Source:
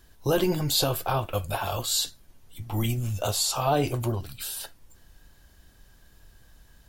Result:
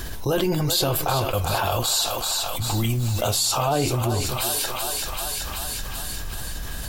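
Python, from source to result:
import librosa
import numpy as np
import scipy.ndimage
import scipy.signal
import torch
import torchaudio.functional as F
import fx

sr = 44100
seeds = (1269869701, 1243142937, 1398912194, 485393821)

y = fx.quant_dither(x, sr, seeds[0], bits=8, dither='none', at=(2.65, 3.31))
y = fx.echo_thinned(y, sr, ms=383, feedback_pct=62, hz=540.0, wet_db=-9.5)
y = fx.env_flatten(y, sr, amount_pct=70)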